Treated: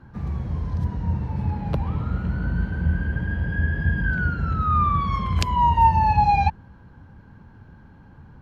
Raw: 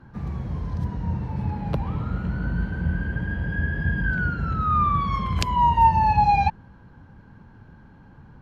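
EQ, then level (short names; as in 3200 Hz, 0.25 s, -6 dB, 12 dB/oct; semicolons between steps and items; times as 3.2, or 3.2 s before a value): bell 76 Hz +4.5 dB 0.64 oct; 0.0 dB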